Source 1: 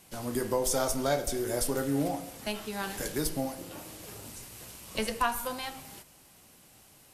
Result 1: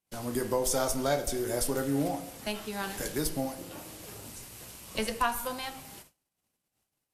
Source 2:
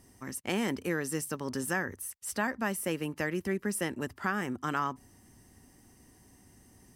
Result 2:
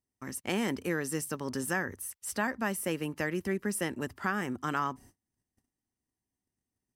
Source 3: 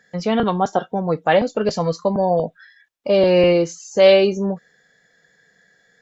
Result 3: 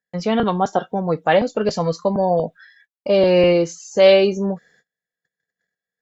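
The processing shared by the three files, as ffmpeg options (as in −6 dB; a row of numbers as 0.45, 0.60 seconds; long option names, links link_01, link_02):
-af "agate=range=-31dB:threshold=-53dB:ratio=16:detection=peak"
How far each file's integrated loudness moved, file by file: 0.0, 0.0, 0.0 LU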